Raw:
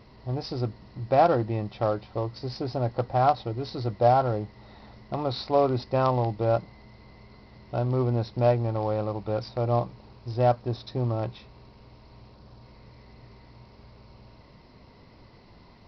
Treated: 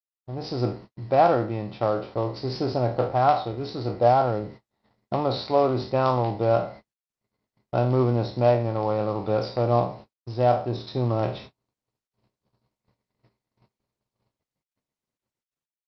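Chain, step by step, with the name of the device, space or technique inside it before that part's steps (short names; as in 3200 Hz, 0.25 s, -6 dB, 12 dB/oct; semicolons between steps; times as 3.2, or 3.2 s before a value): spectral trails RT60 0.44 s; video call (HPF 110 Hz 12 dB/oct; AGC gain up to 12 dB; gate -34 dBFS, range -60 dB; gain -6 dB; Opus 32 kbps 48000 Hz)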